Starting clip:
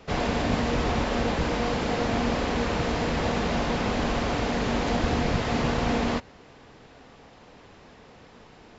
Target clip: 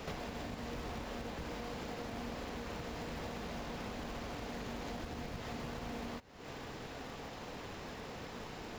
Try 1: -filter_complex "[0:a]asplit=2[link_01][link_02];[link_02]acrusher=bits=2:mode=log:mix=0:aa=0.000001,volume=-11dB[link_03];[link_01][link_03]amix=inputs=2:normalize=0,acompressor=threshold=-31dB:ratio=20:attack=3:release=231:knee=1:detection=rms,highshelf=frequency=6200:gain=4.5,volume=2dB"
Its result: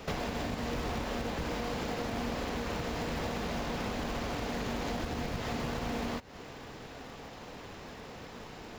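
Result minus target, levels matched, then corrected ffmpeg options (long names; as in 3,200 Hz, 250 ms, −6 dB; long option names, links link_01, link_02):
downward compressor: peak gain reduction −7.5 dB
-filter_complex "[0:a]asplit=2[link_01][link_02];[link_02]acrusher=bits=2:mode=log:mix=0:aa=0.000001,volume=-11dB[link_03];[link_01][link_03]amix=inputs=2:normalize=0,acompressor=threshold=-39dB:ratio=20:attack=3:release=231:knee=1:detection=rms,highshelf=frequency=6200:gain=4.5,volume=2dB"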